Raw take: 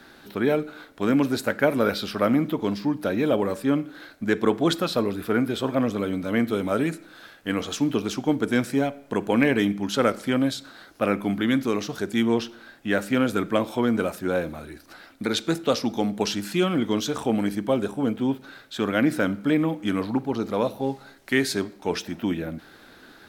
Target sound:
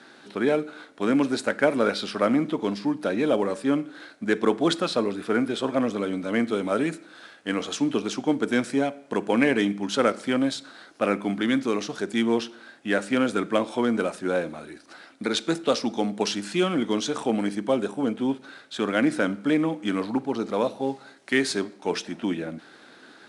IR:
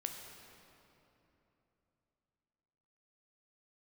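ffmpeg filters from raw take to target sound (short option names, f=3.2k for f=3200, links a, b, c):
-af "highpass=190" -ar 22050 -c:a adpcm_ima_wav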